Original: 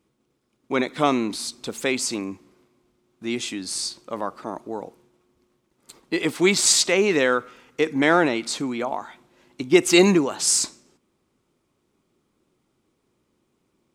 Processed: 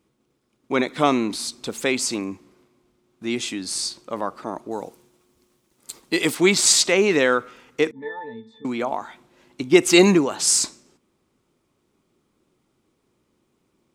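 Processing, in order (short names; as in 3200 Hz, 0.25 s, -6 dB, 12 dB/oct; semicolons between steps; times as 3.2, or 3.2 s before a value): 4.71–6.35 high shelf 4200 Hz +11.5 dB; 7.91–8.65 octave resonator A, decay 0.28 s; gain +1.5 dB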